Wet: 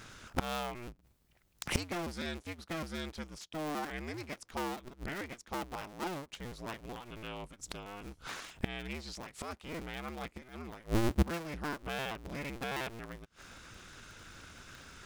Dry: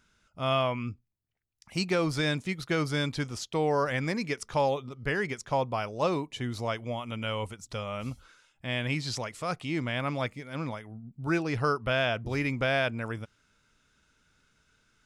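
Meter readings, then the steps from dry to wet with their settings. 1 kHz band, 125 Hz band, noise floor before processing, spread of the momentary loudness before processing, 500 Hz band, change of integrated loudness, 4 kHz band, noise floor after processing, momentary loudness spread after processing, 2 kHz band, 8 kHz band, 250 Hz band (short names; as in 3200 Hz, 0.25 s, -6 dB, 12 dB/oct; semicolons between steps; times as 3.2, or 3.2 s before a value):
-8.5 dB, -9.0 dB, -72 dBFS, 10 LU, -11.5 dB, -9.0 dB, -8.5 dB, -69 dBFS, 16 LU, -9.5 dB, -3.0 dB, -7.0 dB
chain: cycle switcher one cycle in 2, inverted; flipped gate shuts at -33 dBFS, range -27 dB; gain +16 dB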